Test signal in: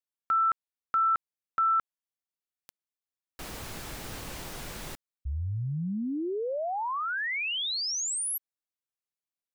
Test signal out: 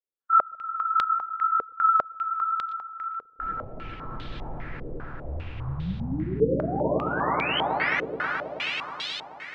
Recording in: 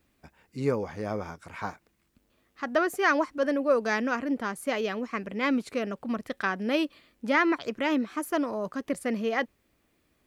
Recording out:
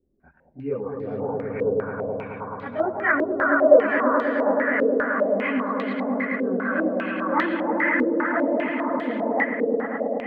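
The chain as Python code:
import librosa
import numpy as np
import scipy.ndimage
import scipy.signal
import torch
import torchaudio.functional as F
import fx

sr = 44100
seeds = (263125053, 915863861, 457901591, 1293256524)

y = fx.spec_expand(x, sr, power=1.6)
y = fx.chorus_voices(y, sr, voices=4, hz=1.0, base_ms=28, depth_ms=4.1, mix_pct=65)
y = fx.air_absorb(y, sr, metres=97.0)
y = fx.echo_swell(y, sr, ms=107, loudest=5, wet_db=-5.5)
y = fx.filter_held_lowpass(y, sr, hz=5.0, low_hz=460.0, high_hz=3600.0)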